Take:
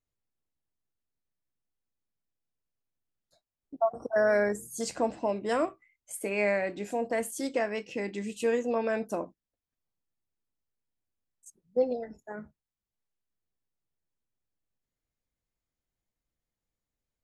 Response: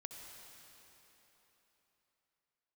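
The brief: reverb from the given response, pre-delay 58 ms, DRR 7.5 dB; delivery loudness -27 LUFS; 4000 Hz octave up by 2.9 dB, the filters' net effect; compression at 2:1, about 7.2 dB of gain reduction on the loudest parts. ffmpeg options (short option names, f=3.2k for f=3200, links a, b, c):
-filter_complex "[0:a]equalizer=f=4k:t=o:g=4,acompressor=threshold=-34dB:ratio=2,asplit=2[a][b];[1:a]atrim=start_sample=2205,adelay=58[c];[b][c]afir=irnorm=-1:irlink=0,volume=-3.5dB[d];[a][d]amix=inputs=2:normalize=0,volume=8dB"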